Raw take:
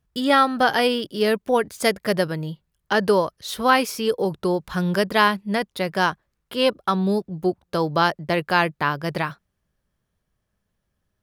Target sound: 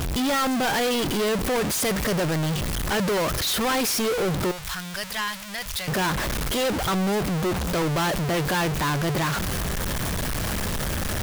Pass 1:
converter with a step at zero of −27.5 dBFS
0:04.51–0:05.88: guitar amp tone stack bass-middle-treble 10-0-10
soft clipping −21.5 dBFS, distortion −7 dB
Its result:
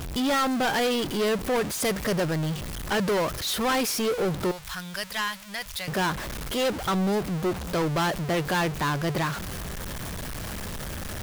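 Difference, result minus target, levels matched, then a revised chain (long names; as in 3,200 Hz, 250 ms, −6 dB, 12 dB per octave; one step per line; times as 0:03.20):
converter with a step at zero: distortion −7 dB
converter with a step at zero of −19 dBFS
0:04.51–0:05.88: guitar amp tone stack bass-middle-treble 10-0-10
soft clipping −21.5 dBFS, distortion −7 dB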